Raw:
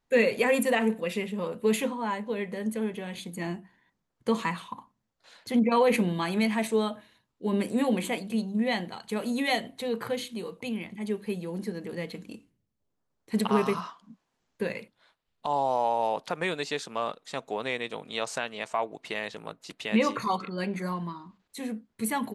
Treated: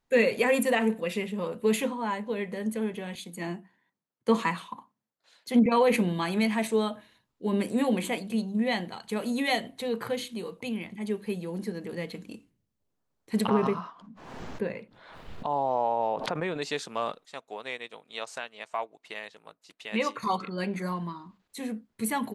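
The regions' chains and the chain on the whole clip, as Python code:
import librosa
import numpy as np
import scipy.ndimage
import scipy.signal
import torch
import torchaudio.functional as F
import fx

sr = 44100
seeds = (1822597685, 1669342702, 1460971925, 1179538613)

y = fx.chain(x, sr, fx.highpass(hz=150.0, slope=12),
    fx.band_widen(depth_pct=40), at=(3.15, 5.66))
y = fx.chain(y, sr, fx.lowpass(hz=1300.0, slope=6),
    fx.pre_swell(db_per_s=53.0), at=(13.48, 16.62))
y = fx.chain(y, sr, fx.low_shelf(hz=310.0, db=-10.0),
    fx.upward_expand(threshold_db=-49.0, expansion=1.5), at=(17.25, 20.23))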